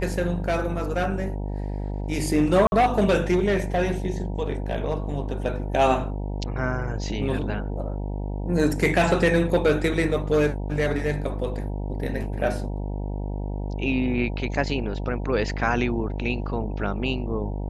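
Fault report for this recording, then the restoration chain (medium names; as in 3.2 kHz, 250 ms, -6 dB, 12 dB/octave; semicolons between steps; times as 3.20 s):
buzz 50 Hz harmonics 19 -29 dBFS
2.67–2.72 s: dropout 51 ms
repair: de-hum 50 Hz, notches 19; interpolate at 2.67 s, 51 ms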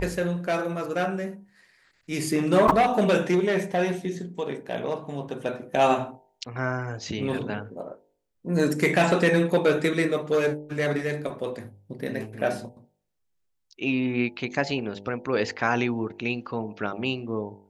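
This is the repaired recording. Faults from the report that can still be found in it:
nothing left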